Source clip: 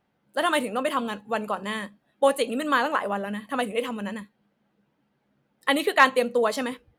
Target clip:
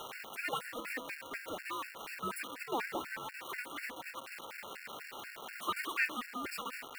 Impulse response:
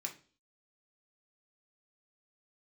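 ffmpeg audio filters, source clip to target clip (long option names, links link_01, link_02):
-filter_complex "[0:a]aeval=exprs='val(0)+0.5*0.0944*sgn(val(0))':channel_layout=same,aderivative,aeval=exprs='val(0)*sin(2*PI*740*n/s)':channel_layout=same,acrossover=split=220 2500:gain=0.158 1 0.0891[link_01][link_02][link_03];[link_01][link_02][link_03]amix=inputs=3:normalize=0,acompressor=mode=upward:threshold=-54dB:ratio=2.5,asplit=2[link_04][link_05];[1:a]atrim=start_sample=2205,asetrate=70560,aresample=44100[link_06];[link_05][link_06]afir=irnorm=-1:irlink=0,volume=-17.5dB[link_07];[link_04][link_07]amix=inputs=2:normalize=0,afftfilt=real='re*gt(sin(2*PI*4.1*pts/sr)*(1-2*mod(floor(b*sr/1024/1400),2)),0)':imag='im*gt(sin(2*PI*4.1*pts/sr)*(1-2*mod(floor(b*sr/1024/1400),2)),0)':win_size=1024:overlap=0.75,volume=6dB"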